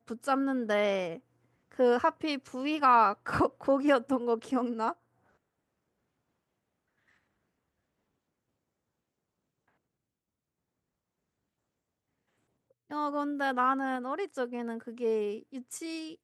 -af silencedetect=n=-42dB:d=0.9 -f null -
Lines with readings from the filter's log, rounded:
silence_start: 4.93
silence_end: 12.91 | silence_duration: 7.98